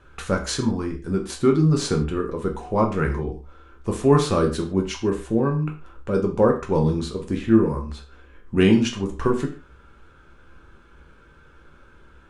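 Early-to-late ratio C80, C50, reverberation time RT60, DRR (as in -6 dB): 14.5 dB, 10.0 dB, no single decay rate, 1.5 dB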